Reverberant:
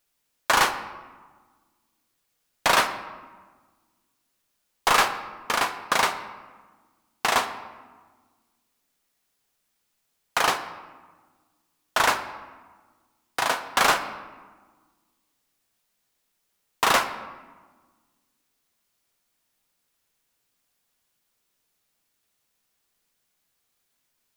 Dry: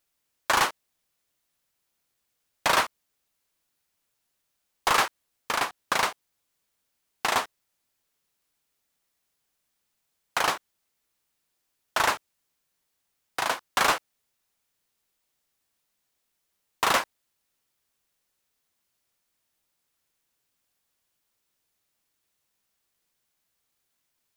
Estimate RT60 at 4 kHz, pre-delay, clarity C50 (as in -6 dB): 0.80 s, 4 ms, 11.0 dB